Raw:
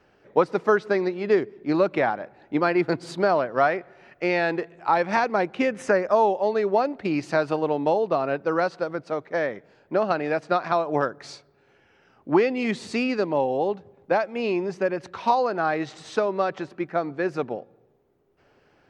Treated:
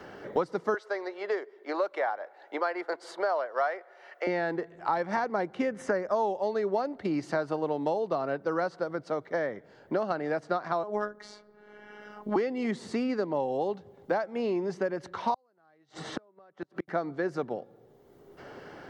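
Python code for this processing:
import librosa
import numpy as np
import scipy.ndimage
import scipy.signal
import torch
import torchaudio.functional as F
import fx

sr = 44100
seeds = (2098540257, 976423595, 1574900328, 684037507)

y = fx.highpass(x, sr, hz=490.0, slope=24, at=(0.74, 4.27))
y = fx.robotise(y, sr, hz=209.0, at=(10.83, 12.36))
y = fx.gate_flip(y, sr, shuts_db=-20.0, range_db=-40, at=(15.34, 16.88))
y = fx.notch(y, sr, hz=2500.0, q=6.2)
y = fx.dynamic_eq(y, sr, hz=3200.0, q=1.2, threshold_db=-43.0, ratio=4.0, max_db=-4)
y = fx.band_squash(y, sr, depth_pct=70)
y = y * 10.0 ** (-6.0 / 20.0)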